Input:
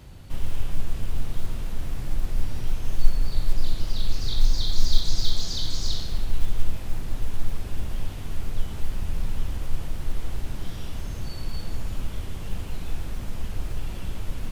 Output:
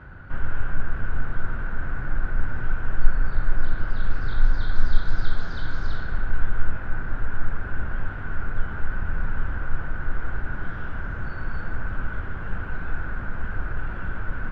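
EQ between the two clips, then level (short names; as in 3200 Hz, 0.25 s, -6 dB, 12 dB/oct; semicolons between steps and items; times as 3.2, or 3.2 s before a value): synth low-pass 1500 Hz, resonance Q 11; +1.0 dB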